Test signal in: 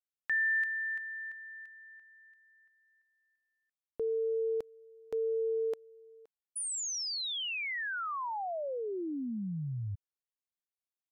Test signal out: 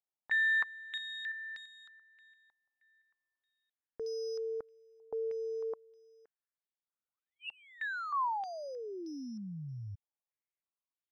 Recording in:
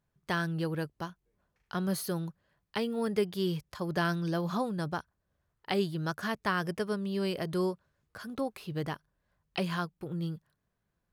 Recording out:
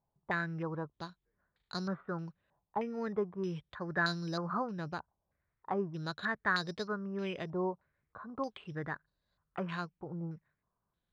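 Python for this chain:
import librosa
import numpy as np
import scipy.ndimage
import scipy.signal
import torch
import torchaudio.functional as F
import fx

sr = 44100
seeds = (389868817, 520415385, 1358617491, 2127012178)

y = np.repeat(scipy.signal.resample_poly(x, 1, 8), 8)[:len(x)]
y = fx.filter_held_lowpass(y, sr, hz=3.2, low_hz=850.0, high_hz=4400.0)
y = F.gain(torch.from_numpy(y), -6.0).numpy()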